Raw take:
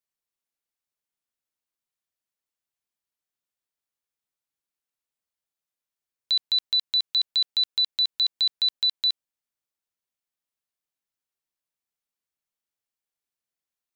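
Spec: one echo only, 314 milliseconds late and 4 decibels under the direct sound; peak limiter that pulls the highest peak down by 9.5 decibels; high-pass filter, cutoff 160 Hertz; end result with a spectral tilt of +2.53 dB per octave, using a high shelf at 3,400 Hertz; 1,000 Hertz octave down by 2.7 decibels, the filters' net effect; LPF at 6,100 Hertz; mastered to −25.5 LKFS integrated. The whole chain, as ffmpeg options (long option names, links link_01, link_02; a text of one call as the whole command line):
ffmpeg -i in.wav -af "highpass=160,lowpass=6100,equalizer=frequency=1000:width_type=o:gain=-4,highshelf=frequency=3400:gain=4.5,alimiter=level_in=1dB:limit=-24dB:level=0:latency=1,volume=-1dB,aecho=1:1:314:0.631,volume=3.5dB" out.wav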